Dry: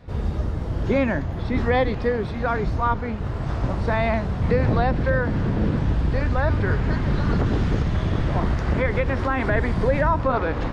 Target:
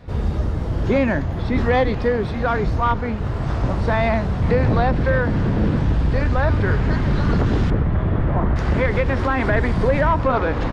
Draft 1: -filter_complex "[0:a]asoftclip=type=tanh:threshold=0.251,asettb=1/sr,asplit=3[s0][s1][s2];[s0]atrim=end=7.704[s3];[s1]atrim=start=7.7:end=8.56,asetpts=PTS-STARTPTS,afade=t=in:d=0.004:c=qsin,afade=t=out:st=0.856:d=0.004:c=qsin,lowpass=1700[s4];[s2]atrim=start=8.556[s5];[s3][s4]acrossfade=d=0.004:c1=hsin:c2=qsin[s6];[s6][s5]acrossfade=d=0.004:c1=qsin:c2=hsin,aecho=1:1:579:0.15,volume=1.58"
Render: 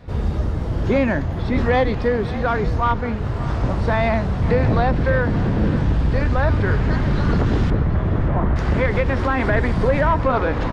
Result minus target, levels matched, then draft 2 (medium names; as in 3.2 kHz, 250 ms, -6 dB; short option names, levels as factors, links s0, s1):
echo-to-direct +11 dB
-filter_complex "[0:a]asoftclip=type=tanh:threshold=0.251,asettb=1/sr,asplit=3[s0][s1][s2];[s0]atrim=end=7.704[s3];[s1]atrim=start=7.7:end=8.56,asetpts=PTS-STARTPTS,afade=t=in:d=0.004:c=qsin,afade=t=out:st=0.856:d=0.004:c=qsin,lowpass=1700[s4];[s2]atrim=start=8.556[s5];[s3][s4]acrossfade=d=0.004:c1=hsin:c2=qsin[s6];[s6][s5]acrossfade=d=0.004:c1=qsin:c2=hsin,aecho=1:1:579:0.0422,volume=1.58"